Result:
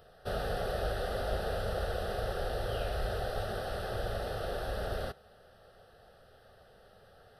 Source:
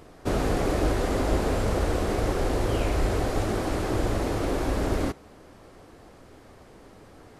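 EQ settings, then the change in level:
low-shelf EQ 240 Hz −6.5 dB
phaser with its sweep stopped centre 1,500 Hz, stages 8
−3.5 dB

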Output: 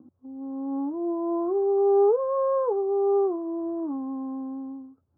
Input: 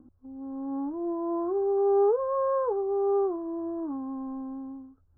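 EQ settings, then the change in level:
high-pass filter 110 Hz 24 dB per octave
low-pass filter 1,100 Hz 12 dB per octave
+3.0 dB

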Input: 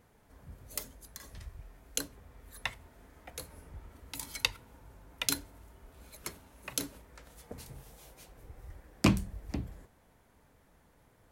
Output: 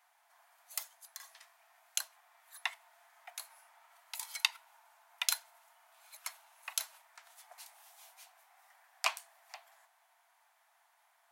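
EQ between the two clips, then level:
Chebyshev high-pass filter 680 Hz, order 6
0.0 dB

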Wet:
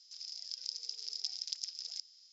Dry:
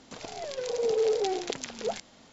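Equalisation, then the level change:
resonant band-pass 5,100 Hz, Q 14
high-frequency loss of the air 58 metres
first difference
+17.0 dB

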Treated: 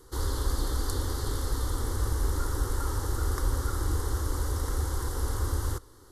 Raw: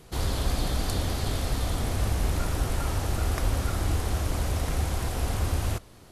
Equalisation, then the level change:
phaser with its sweep stopped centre 670 Hz, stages 6
0.0 dB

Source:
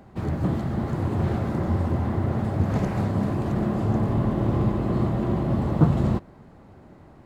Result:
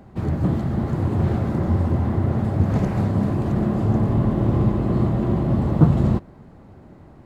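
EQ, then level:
low-shelf EQ 420 Hz +4.5 dB
0.0 dB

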